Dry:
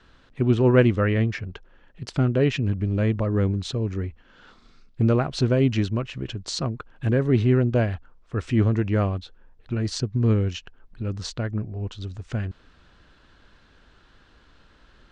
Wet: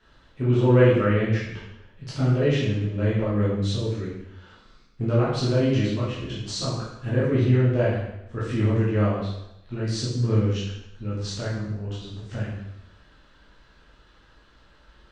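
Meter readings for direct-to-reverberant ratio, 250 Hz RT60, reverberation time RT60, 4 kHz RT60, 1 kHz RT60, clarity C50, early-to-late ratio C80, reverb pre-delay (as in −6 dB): −9.0 dB, 0.85 s, 0.85 s, 0.80 s, 0.85 s, 0.5 dB, 4.0 dB, 6 ms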